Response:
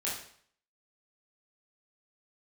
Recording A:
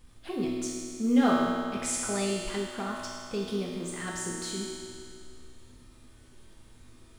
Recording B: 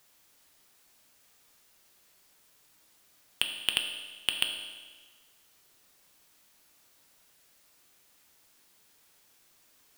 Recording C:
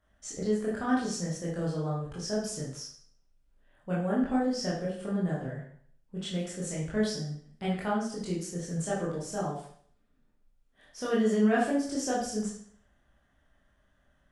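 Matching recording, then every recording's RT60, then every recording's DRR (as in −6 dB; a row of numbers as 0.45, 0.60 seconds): C; 2.3, 1.4, 0.55 seconds; −4.5, 3.5, −7.0 decibels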